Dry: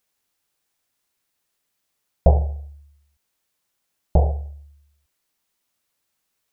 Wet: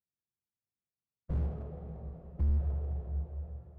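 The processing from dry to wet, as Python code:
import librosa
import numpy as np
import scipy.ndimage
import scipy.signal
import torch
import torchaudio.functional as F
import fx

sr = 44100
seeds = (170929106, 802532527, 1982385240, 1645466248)

p1 = fx.envelope_flatten(x, sr, power=0.3)
p2 = fx.leveller(p1, sr, passes=2)
p3 = 10.0 ** (-7.0 / 20.0) * np.tanh(p2 / 10.0 ** (-7.0 / 20.0))
p4 = fx.stretch_vocoder_free(p3, sr, factor=0.58)
p5 = fx.bandpass_q(p4, sr, hz=120.0, q=1.4)
p6 = fx.air_absorb(p5, sr, metres=290.0)
p7 = p6 + fx.room_early_taps(p6, sr, ms=(14, 44), db=(-11.5, -11.0), dry=0)
p8 = fx.rev_plate(p7, sr, seeds[0], rt60_s=4.9, hf_ratio=0.9, predelay_ms=0, drr_db=6.0)
y = fx.slew_limit(p8, sr, full_power_hz=3.8)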